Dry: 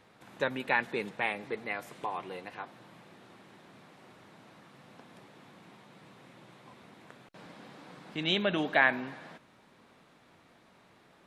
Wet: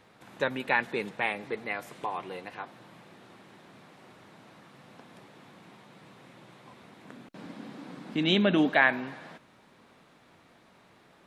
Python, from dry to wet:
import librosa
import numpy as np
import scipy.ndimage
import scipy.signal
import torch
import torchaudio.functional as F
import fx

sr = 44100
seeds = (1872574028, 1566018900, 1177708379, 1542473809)

y = fx.peak_eq(x, sr, hz=250.0, db=11.0, octaves=0.86, at=(7.05, 8.7))
y = y * librosa.db_to_amplitude(2.0)